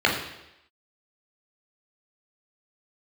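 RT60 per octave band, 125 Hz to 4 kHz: 0.75, 0.85, 0.90, 0.85, 0.90, 0.90 seconds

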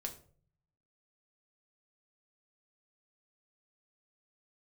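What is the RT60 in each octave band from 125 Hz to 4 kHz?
1.1, 0.70, 0.55, 0.40, 0.35, 0.30 seconds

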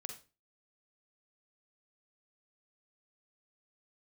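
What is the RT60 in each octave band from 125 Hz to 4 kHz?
0.45, 0.40, 0.35, 0.30, 0.30, 0.30 seconds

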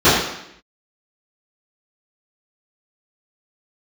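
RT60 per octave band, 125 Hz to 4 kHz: 0.75, 0.85, 0.75, 0.75, 0.80, 0.75 seconds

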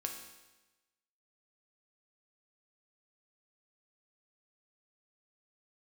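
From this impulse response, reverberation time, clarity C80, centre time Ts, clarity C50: 1.1 s, 8.0 dB, 32 ms, 6.0 dB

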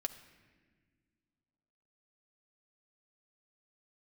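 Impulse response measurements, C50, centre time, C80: 12.5 dB, 11 ms, 13.5 dB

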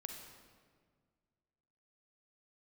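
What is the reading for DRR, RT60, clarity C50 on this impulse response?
3.0 dB, 1.8 s, 4.0 dB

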